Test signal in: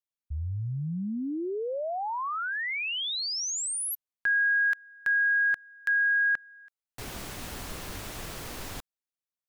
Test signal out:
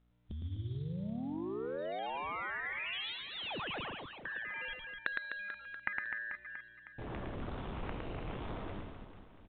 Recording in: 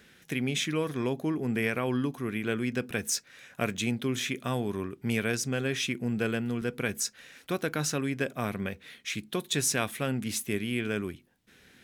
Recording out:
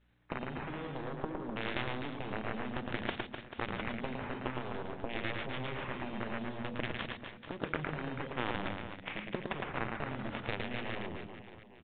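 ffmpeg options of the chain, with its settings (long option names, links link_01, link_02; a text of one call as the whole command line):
ffmpeg -i in.wav -af "agate=range=-33dB:threshold=-53dB:ratio=3:release=62:detection=peak,afwtdn=0.0112,acompressor=threshold=-39dB:ratio=8:attack=17:release=90:knee=1:detection=peak,aeval=exprs='val(0)+0.0002*(sin(2*PI*60*n/s)+sin(2*PI*2*60*n/s)/2+sin(2*PI*3*60*n/s)/3+sin(2*PI*4*60*n/s)/4+sin(2*PI*5*60*n/s)/5)':channel_layout=same,acrusher=samples=9:mix=1:aa=0.000001:lfo=1:lforange=9:lforate=0.53,aeval=exprs='0.106*(cos(1*acos(clip(val(0)/0.106,-1,1)))-cos(1*PI/2))+0.00376*(cos(3*acos(clip(val(0)/0.106,-1,1)))-cos(3*PI/2))+0.00376*(cos(5*acos(clip(val(0)/0.106,-1,1)))-cos(5*PI/2))+0.0237*(cos(7*acos(clip(val(0)/0.106,-1,1)))-cos(7*PI/2))':channel_layout=same,volume=28dB,asoftclip=hard,volume=-28dB,aecho=1:1:110|253|438.9|680.6|994.7:0.631|0.398|0.251|0.158|0.1,volume=8.5dB" -ar 8000 -c:a pcm_mulaw out.wav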